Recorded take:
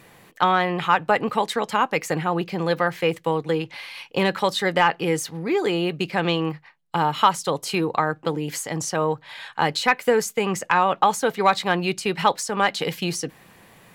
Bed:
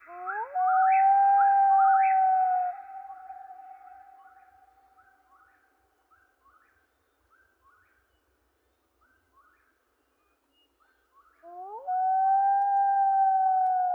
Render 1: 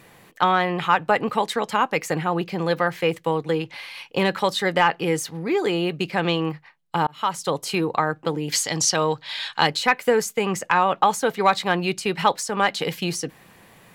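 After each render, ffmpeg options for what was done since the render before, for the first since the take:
ffmpeg -i in.wav -filter_complex "[0:a]asettb=1/sr,asplit=3[link_01][link_02][link_03];[link_01]atrim=end=8.524[link_04];[link_02]atrim=start=8.52:end=9.67,asetpts=PTS-STARTPTS,afade=type=in:duration=0.004:curve=qsin,afade=type=out:start_time=1.146:duration=0.004:curve=qsin,equalizer=frequency=4400:width_type=o:width=1.6:gain=13.5[link_05];[link_03]atrim=start=9.666[link_06];[link_04][link_05]acrossfade=duration=0.004:curve1=hsin:curve2=qsin[link_07];[link_07][link_06]acrossfade=duration=0.004:curve1=qsin:curve2=hsin,asplit=2[link_08][link_09];[link_08]atrim=end=7.07,asetpts=PTS-STARTPTS,afade=type=out:start_time=7.066:duration=0.004:curve=hsin[link_10];[link_09]atrim=start=7.07,asetpts=PTS-STARTPTS,afade=type=in:duration=0.41[link_11];[link_10][link_11]concat=n=2:v=0:a=1" out.wav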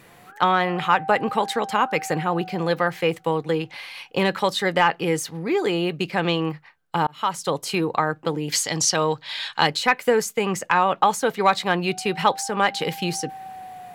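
ffmpeg -i in.wav -i bed.wav -filter_complex "[1:a]volume=-14dB[link_01];[0:a][link_01]amix=inputs=2:normalize=0" out.wav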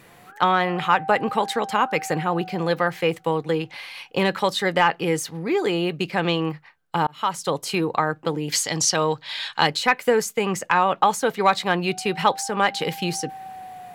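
ffmpeg -i in.wav -af anull out.wav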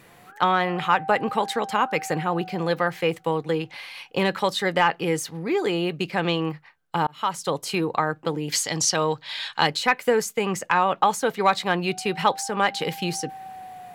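ffmpeg -i in.wav -af "volume=-1.5dB" out.wav

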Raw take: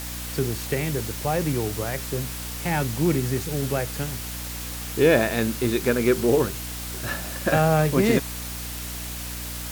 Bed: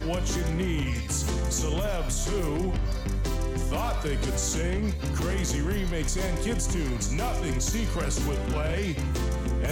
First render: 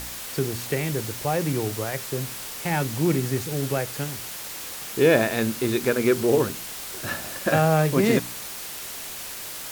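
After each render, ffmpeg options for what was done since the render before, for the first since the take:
ffmpeg -i in.wav -af "bandreject=frequency=60:width_type=h:width=4,bandreject=frequency=120:width_type=h:width=4,bandreject=frequency=180:width_type=h:width=4,bandreject=frequency=240:width_type=h:width=4,bandreject=frequency=300:width_type=h:width=4" out.wav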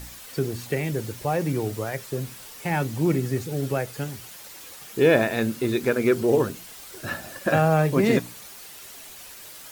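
ffmpeg -i in.wav -af "afftdn=noise_reduction=9:noise_floor=-36" out.wav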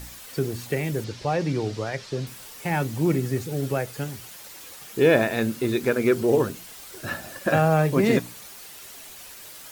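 ffmpeg -i in.wav -filter_complex "[0:a]asettb=1/sr,asplit=3[link_01][link_02][link_03];[link_01]atrim=end=1.044[link_04];[link_02]atrim=start=1.04:end=2.27,asetpts=PTS-STARTPTS,afade=type=in:duration=0.004:curve=qsin,afade=type=out:start_time=1.226:duration=0.004:curve=qsin,lowpass=frequency=4900:width_type=q:width=1.7[link_05];[link_03]atrim=start=2.266[link_06];[link_04][link_05]acrossfade=duration=0.004:curve1=hsin:curve2=qsin[link_07];[link_07][link_06]acrossfade=duration=0.004:curve1=qsin:curve2=hsin" out.wav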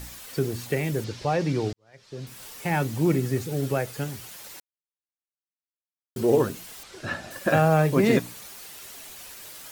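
ffmpeg -i in.wav -filter_complex "[0:a]asettb=1/sr,asplit=3[link_01][link_02][link_03];[link_01]atrim=end=6.834[link_04];[link_02]atrim=start=6.83:end=7.31,asetpts=PTS-STARTPTS,afade=type=in:duration=0.004:curve=qsin,afade=type=out:start_time=0.476:duration=0.004:curve=qsin,lowpass=6000[link_05];[link_03]atrim=start=7.306[link_06];[link_04][link_05]acrossfade=duration=0.004:curve1=hsin:curve2=qsin[link_07];[link_07][link_06]acrossfade=duration=0.004:curve1=qsin:curve2=hsin,asplit=4[link_08][link_09][link_10][link_11];[link_08]atrim=end=1.73,asetpts=PTS-STARTPTS,afade=type=out:start_time=1.726:duration=0.004:curve=hsin[link_12];[link_09]atrim=start=1.73:end=4.6,asetpts=PTS-STARTPTS,afade=type=in:duration=0.71:curve=qua,afade=type=out:start_time=2.866:duration=0.004:curve=hsin[link_13];[link_10]atrim=start=4.6:end=6.16,asetpts=PTS-STARTPTS,volume=0[link_14];[link_11]atrim=start=6.16,asetpts=PTS-STARTPTS,afade=type=in:duration=0.004:curve=hsin[link_15];[link_12][link_13][link_14][link_15]concat=n=4:v=0:a=1" out.wav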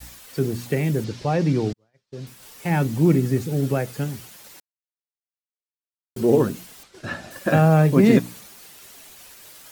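ffmpeg -i in.wav -af "agate=range=-33dB:threshold=-39dB:ratio=3:detection=peak,adynamicequalizer=threshold=0.0141:dfrequency=200:dqfactor=0.91:tfrequency=200:tqfactor=0.91:attack=5:release=100:ratio=0.375:range=4:mode=boostabove:tftype=bell" out.wav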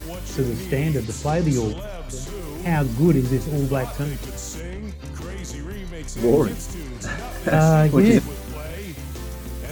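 ffmpeg -i in.wav -i bed.wav -filter_complex "[1:a]volume=-5dB[link_01];[0:a][link_01]amix=inputs=2:normalize=0" out.wav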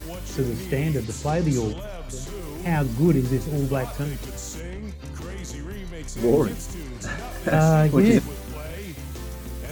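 ffmpeg -i in.wav -af "volume=-2dB" out.wav

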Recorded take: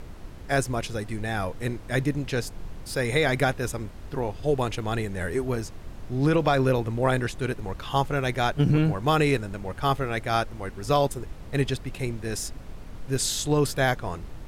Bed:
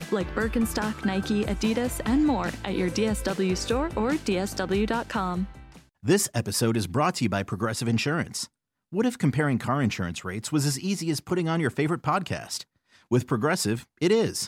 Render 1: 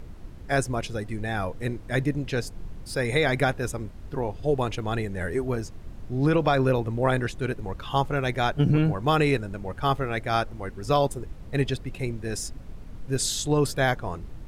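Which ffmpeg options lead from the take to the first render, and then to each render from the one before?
ffmpeg -i in.wav -af "afftdn=noise_reduction=6:noise_floor=-41" out.wav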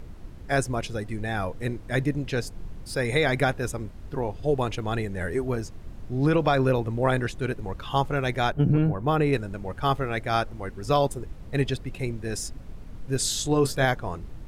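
ffmpeg -i in.wav -filter_complex "[0:a]asettb=1/sr,asplit=3[link_01][link_02][link_03];[link_01]atrim=end=8.524[link_04];[link_02]atrim=start=8.52:end=9.33,asetpts=PTS-STARTPTS,afade=type=in:duration=0.004:curve=qsin,afade=type=out:start_time=0.806:duration=0.004:curve=qsin,equalizer=frequency=5600:width=0.38:gain=-12[link_05];[link_03]atrim=start=9.326[link_06];[link_04][link_05]acrossfade=duration=0.004:curve1=hsin:curve2=qsin[link_07];[link_07][link_06]acrossfade=duration=0.004:curve1=qsin:curve2=hsin,asettb=1/sr,asplit=3[link_08][link_09][link_10];[link_08]atrim=end=13.234[link_11];[link_09]atrim=start=13.23:end=13.85,asetpts=PTS-STARTPTS,afade=type=in:duration=0.004:curve=qsin,afade=type=out:start_time=0.616:duration=0.004:curve=qsin,asplit=2[link_12][link_13];[link_13]adelay=23,volume=-9dB[link_14];[link_12][link_14]amix=inputs=2:normalize=0,atrim=end_sample=27342[link_15];[link_10]atrim=start=13.846[link_16];[link_11][link_15]acrossfade=duration=0.004:curve1=hsin:curve2=qsin[link_17];[link_17][link_16]acrossfade=duration=0.004:curve1=qsin:curve2=hsin" out.wav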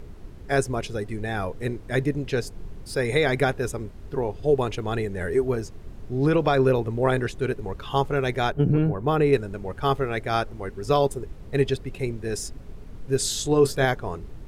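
ffmpeg -i in.wav -af "equalizer=frequency=410:width=5.2:gain=7.5" out.wav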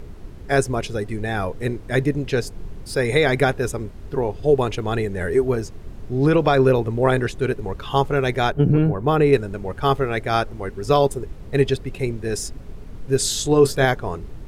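ffmpeg -i in.wav -af "volume=4dB" out.wav

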